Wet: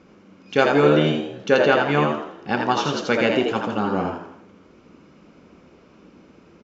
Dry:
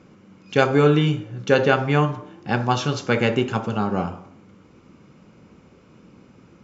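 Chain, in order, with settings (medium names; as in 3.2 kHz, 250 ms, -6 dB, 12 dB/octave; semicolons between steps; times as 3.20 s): low-pass 6.6 kHz 24 dB/octave; peaking EQ 120 Hz -12 dB 0.5 oct; on a send: frequency-shifting echo 82 ms, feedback 38%, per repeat +78 Hz, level -4.5 dB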